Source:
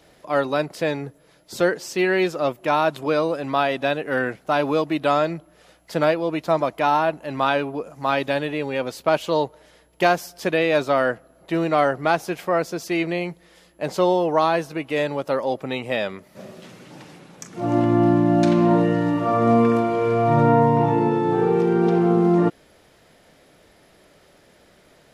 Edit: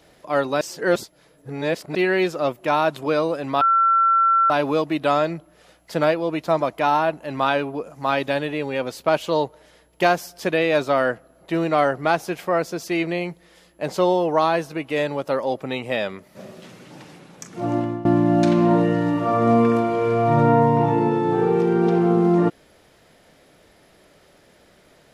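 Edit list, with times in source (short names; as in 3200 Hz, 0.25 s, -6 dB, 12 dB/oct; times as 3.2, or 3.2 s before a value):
0.61–1.95 reverse
3.61–4.5 bleep 1350 Hz -13.5 dBFS
17.63–18.05 fade out, to -20.5 dB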